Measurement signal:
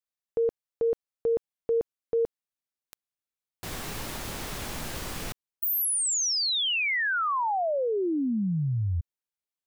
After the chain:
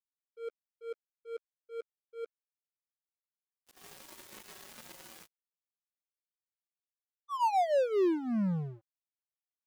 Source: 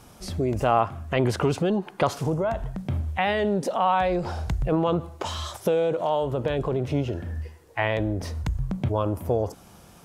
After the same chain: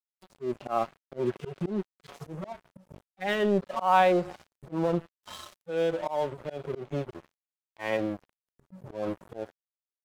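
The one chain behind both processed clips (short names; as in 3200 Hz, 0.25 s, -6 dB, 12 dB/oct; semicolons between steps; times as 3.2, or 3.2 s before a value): median-filter separation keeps harmonic; HPF 200 Hz 12 dB/oct; comb 5.4 ms, depth 49%; crossover distortion -38.5 dBFS; auto swell 0.162 s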